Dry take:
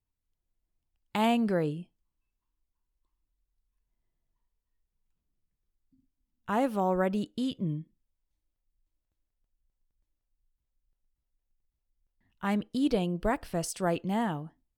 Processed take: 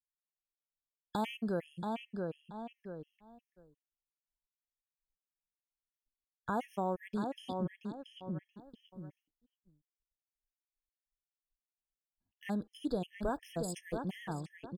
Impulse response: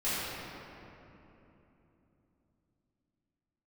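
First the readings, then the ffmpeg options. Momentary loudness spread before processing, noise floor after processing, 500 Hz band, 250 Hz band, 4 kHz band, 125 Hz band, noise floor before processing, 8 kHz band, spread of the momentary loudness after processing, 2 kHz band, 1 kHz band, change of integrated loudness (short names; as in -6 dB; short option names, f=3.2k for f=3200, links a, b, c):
9 LU, under -85 dBFS, -7.5 dB, -8.0 dB, -8.0 dB, -7.0 dB, -85 dBFS, n/a, 14 LU, -8.5 dB, -7.0 dB, -9.0 dB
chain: -filter_complex "[0:a]asplit=2[a][b];[b]adelay=679,lowpass=f=3.3k:p=1,volume=-6.5dB,asplit=2[c][d];[d]adelay=679,lowpass=f=3.3k:p=1,volume=0.19,asplit=2[e][f];[f]adelay=679,lowpass=f=3.3k:p=1,volume=0.19[g];[a][c][e][g]amix=inputs=4:normalize=0,agate=range=-33dB:threshold=-57dB:ratio=3:detection=peak,acompressor=threshold=-46dB:ratio=2,afftfilt=real='re*gt(sin(2*PI*2.8*pts/sr)*(1-2*mod(floor(b*sr/1024/1700),2)),0)':imag='im*gt(sin(2*PI*2.8*pts/sr)*(1-2*mod(floor(b*sr/1024/1700),2)),0)':win_size=1024:overlap=0.75,volume=5.5dB"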